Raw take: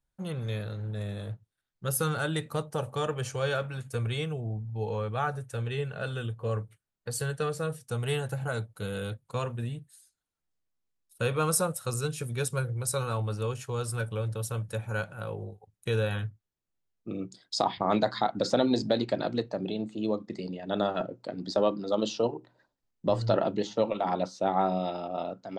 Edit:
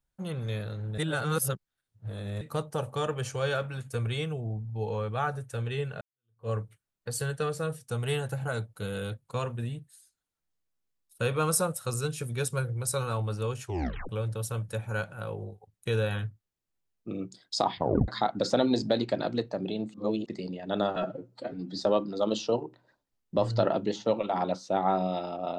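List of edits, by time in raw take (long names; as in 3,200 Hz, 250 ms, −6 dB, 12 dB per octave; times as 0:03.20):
0:00.98–0:02.41: reverse
0:06.01–0:06.49: fade in exponential
0:13.65: tape stop 0.44 s
0:17.78: tape stop 0.30 s
0:19.94–0:20.26: reverse
0:20.96–0:21.54: time-stretch 1.5×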